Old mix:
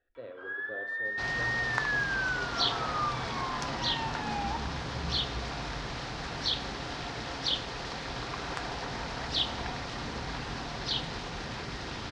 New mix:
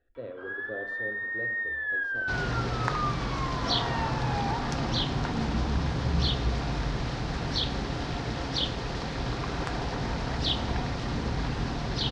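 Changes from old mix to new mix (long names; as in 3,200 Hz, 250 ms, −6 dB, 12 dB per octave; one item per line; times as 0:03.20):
second sound: entry +1.10 s
master: add low-shelf EQ 450 Hz +10.5 dB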